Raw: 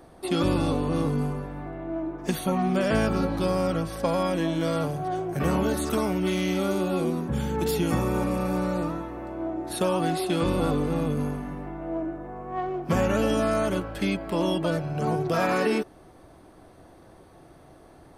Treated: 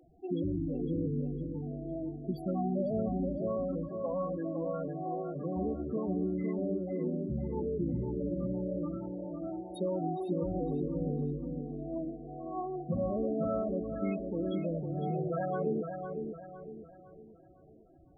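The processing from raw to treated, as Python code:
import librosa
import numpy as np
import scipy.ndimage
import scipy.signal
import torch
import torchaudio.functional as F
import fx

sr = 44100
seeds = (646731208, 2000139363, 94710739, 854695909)

y = fx.highpass(x, sr, hz=220.0, slope=6, at=(3.37, 5.56))
y = fx.spec_topn(y, sr, count=8)
y = fx.echo_filtered(y, sr, ms=506, feedback_pct=41, hz=2900.0, wet_db=-6.0)
y = F.gain(torch.from_numpy(y), -7.0).numpy()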